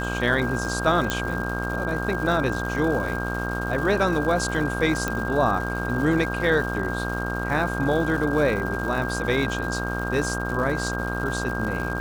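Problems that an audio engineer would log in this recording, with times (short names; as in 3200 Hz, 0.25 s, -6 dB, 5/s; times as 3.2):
buzz 60 Hz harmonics 25 -29 dBFS
crackle 340/s -32 dBFS
tone 1600 Hz -30 dBFS
1.1 pop -9 dBFS
5.08 pop -11 dBFS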